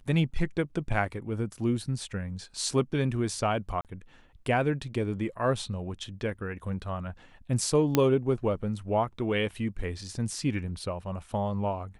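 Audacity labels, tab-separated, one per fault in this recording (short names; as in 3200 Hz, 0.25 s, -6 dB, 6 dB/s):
3.810000	3.850000	gap 38 ms
7.950000	7.950000	pop -8 dBFS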